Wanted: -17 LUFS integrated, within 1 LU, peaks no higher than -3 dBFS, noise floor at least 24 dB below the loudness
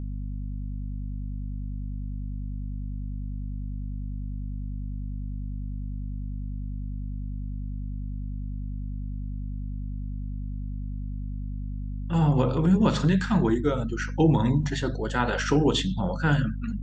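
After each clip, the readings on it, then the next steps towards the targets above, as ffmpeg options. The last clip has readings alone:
hum 50 Hz; harmonics up to 250 Hz; hum level -30 dBFS; loudness -29.0 LUFS; peak -7.5 dBFS; loudness target -17.0 LUFS
-> -af "bandreject=f=50:t=h:w=6,bandreject=f=100:t=h:w=6,bandreject=f=150:t=h:w=6,bandreject=f=200:t=h:w=6,bandreject=f=250:t=h:w=6"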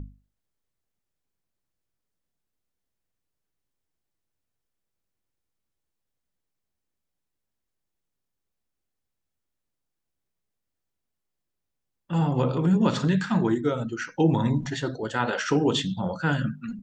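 hum none; loudness -25.0 LUFS; peak -7.5 dBFS; loudness target -17.0 LUFS
-> -af "volume=8dB,alimiter=limit=-3dB:level=0:latency=1"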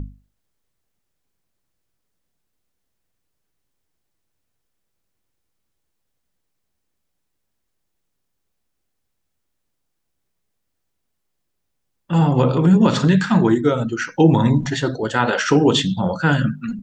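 loudness -17.5 LUFS; peak -3.0 dBFS; noise floor -74 dBFS

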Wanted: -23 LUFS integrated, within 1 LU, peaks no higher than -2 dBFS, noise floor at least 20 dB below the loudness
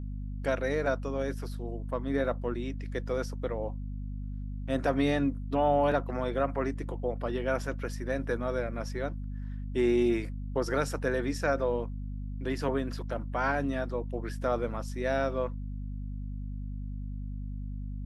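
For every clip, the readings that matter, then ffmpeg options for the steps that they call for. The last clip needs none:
hum 50 Hz; harmonics up to 250 Hz; hum level -34 dBFS; loudness -32.0 LUFS; peak -14.5 dBFS; loudness target -23.0 LUFS
-> -af "bandreject=f=50:t=h:w=4,bandreject=f=100:t=h:w=4,bandreject=f=150:t=h:w=4,bandreject=f=200:t=h:w=4,bandreject=f=250:t=h:w=4"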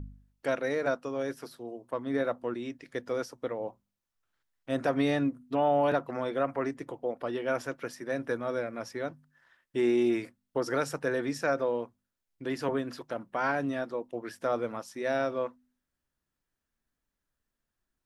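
hum none; loudness -32.0 LUFS; peak -15.5 dBFS; loudness target -23.0 LUFS
-> -af "volume=9dB"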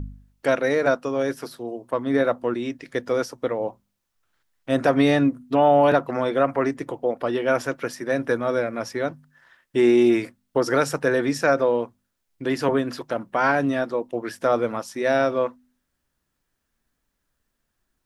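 loudness -23.0 LUFS; peak -6.5 dBFS; noise floor -77 dBFS

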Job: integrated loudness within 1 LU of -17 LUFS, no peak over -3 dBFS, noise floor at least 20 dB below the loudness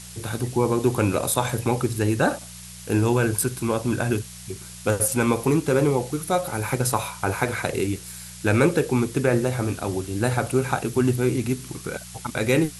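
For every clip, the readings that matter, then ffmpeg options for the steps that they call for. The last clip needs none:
hum 60 Hz; harmonics up to 180 Hz; hum level -44 dBFS; noise floor -41 dBFS; noise floor target -44 dBFS; loudness -23.5 LUFS; peak -5.0 dBFS; loudness target -17.0 LUFS
-> -af "bandreject=f=60:t=h:w=4,bandreject=f=120:t=h:w=4,bandreject=f=180:t=h:w=4"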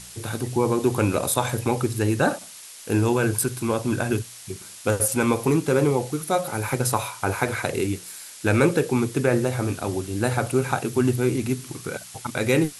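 hum none; noise floor -42 dBFS; noise floor target -44 dBFS
-> -af "afftdn=nr=6:nf=-42"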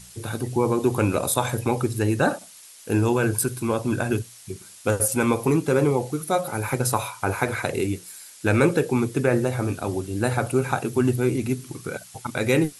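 noise floor -47 dBFS; loudness -24.0 LUFS; peak -5.0 dBFS; loudness target -17.0 LUFS
-> -af "volume=7dB,alimiter=limit=-3dB:level=0:latency=1"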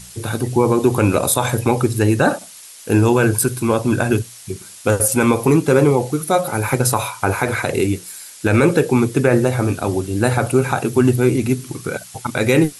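loudness -17.5 LUFS; peak -3.0 dBFS; noise floor -40 dBFS

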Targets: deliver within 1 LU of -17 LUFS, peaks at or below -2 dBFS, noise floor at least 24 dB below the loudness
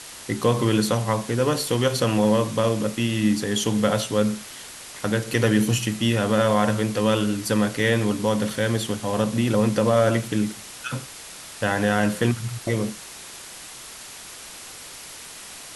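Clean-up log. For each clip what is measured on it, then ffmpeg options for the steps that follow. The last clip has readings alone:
noise floor -40 dBFS; noise floor target -47 dBFS; loudness -22.5 LUFS; peak -5.5 dBFS; loudness target -17.0 LUFS
-> -af "afftdn=nr=7:nf=-40"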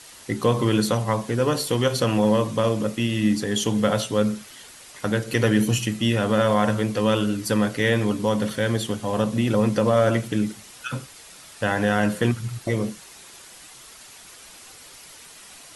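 noise floor -46 dBFS; noise floor target -47 dBFS
-> -af "afftdn=nr=6:nf=-46"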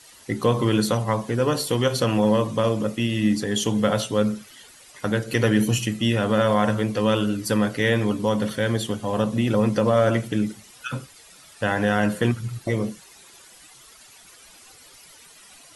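noise floor -49 dBFS; loudness -23.0 LUFS; peak -5.5 dBFS; loudness target -17.0 LUFS
-> -af "volume=6dB,alimiter=limit=-2dB:level=0:latency=1"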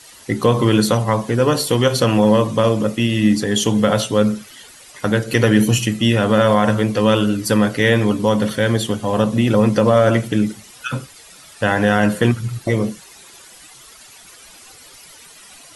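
loudness -17.0 LUFS; peak -2.0 dBFS; noise floor -43 dBFS

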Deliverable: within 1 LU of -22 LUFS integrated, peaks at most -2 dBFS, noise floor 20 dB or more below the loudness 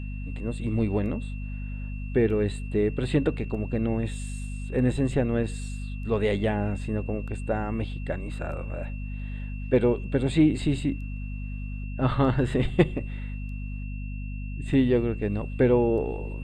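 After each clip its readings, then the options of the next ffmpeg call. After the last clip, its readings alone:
hum 50 Hz; harmonics up to 250 Hz; hum level -31 dBFS; steady tone 2700 Hz; tone level -47 dBFS; loudness -27.5 LUFS; peak -5.5 dBFS; loudness target -22.0 LUFS
-> -af "bandreject=f=50:t=h:w=6,bandreject=f=100:t=h:w=6,bandreject=f=150:t=h:w=6,bandreject=f=200:t=h:w=6,bandreject=f=250:t=h:w=6"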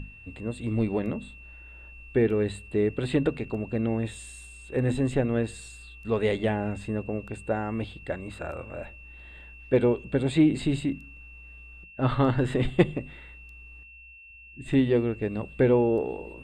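hum none; steady tone 2700 Hz; tone level -47 dBFS
-> -af "bandreject=f=2.7k:w=30"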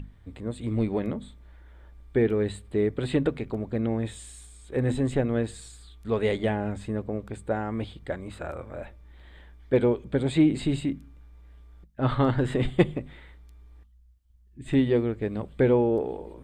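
steady tone none; loudness -27.0 LUFS; peak -6.0 dBFS; loudness target -22.0 LUFS
-> -af "volume=5dB,alimiter=limit=-2dB:level=0:latency=1"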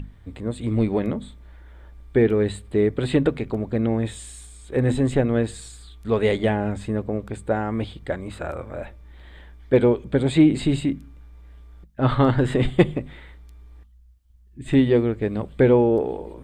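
loudness -22.5 LUFS; peak -2.0 dBFS; noise floor -50 dBFS

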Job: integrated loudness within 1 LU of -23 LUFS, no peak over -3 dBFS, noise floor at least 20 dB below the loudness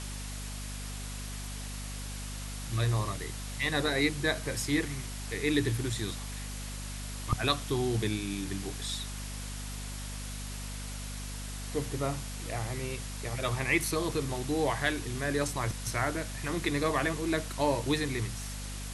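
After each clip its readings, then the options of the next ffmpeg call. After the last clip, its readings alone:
hum 50 Hz; harmonics up to 250 Hz; hum level -37 dBFS; noise floor -39 dBFS; noise floor target -53 dBFS; loudness -33.0 LUFS; peak -12.5 dBFS; loudness target -23.0 LUFS
-> -af "bandreject=f=50:t=h:w=6,bandreject=f=100:t=h:w=6,bandreject=f=150:t=h:w=6,bandreject=f=200:t=h:w=6,bandreject=f=250:t=h:w=6"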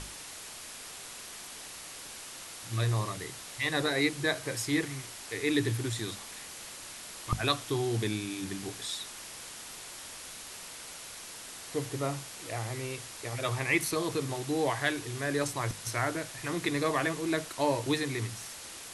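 hum none; noise floor -45 dBFS; noise floor target -54 dBFS
-> -af "afftdn=nr=9:nf=-45"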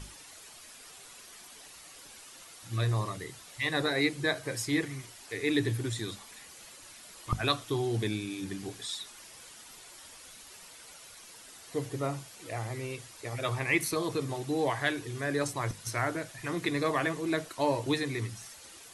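noise floor -51 dBFS; noise floor target -53 dBFS
-> -af "afftdn=nr=6:nf=-51"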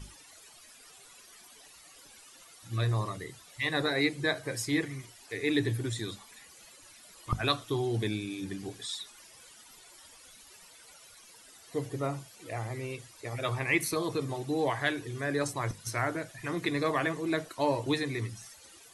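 noise floor -55 dBFS; loudness -32.5 LUFS; peak -13.0 dBFS; loudness target -23.0 LUFS
-> -af "volume=9.5dB"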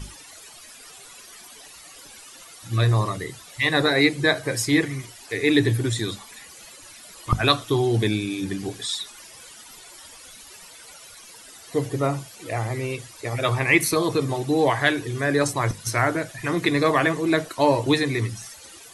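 loudness -23.0 LUFS; peak -3.5 dBFS; noise floor -45 dBFS

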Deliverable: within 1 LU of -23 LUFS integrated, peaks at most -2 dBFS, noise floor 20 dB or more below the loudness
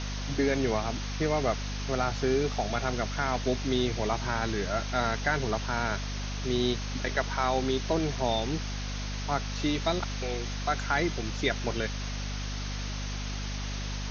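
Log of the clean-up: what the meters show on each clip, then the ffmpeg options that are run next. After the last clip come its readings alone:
hum 50 Hz; harmonics up to 250 Hz; hum level -32 dBFS; noise floor -34 dBFS; noise floor target -51 dBFS; loudness -30.5 LUFS; peak -12.5 dBFS; loudness target -23.0 LUFS
-> -af "bandreject=f=50:t=h:w=4,bandreject=f=100:t=h:w=4,bandreject=f=150:t=h:w=4,bandreject=f=200:t=h:w=4,bandreject=f=250:t=h:w=4"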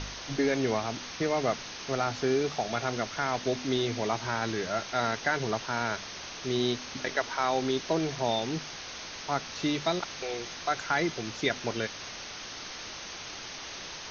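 hum none; noise floor -42 dBFS; noise floor target -51 dBFS
-> -af "afftdn=nr=9:nf=-42"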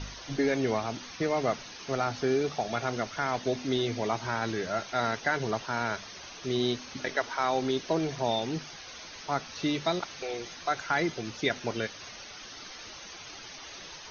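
noise floor -45 dBFS; noise floor target -51 dBFS
-> -af "afftdn=nr=6:nf=-45"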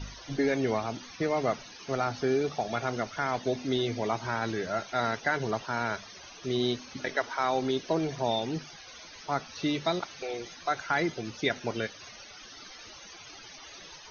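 noise floor -48 dBFS; noise floor target -51 dBFS
-> -af "afftdn=nr=6:nf=-48"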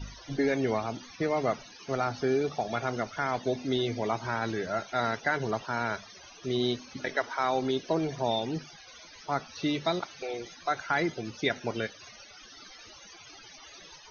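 noise floor -51 dBFS; loudness -31.0 LUFS; peak -13.0 dBFS; loudness target -23.0 LUFS
-> -af "volume=8dB"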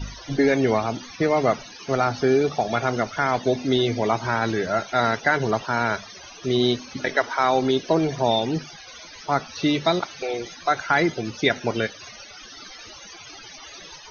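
loudness -23.0 LUFS; peak -5.0 dBFS; noise floor -43 dBFS

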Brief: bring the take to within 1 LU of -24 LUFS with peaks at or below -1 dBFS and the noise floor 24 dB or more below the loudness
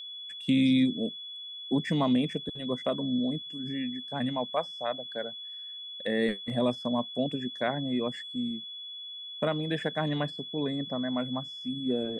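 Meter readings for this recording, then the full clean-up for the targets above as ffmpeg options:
steady tone 3400 Hz; tone level -39 dBFS; loudness -31.0 LUFS; peak -14.5 dBFS; loudness target -24.0 LUFS
-> -af "bandreject=f=3.4k:w=30"
-af "volume=7dB"

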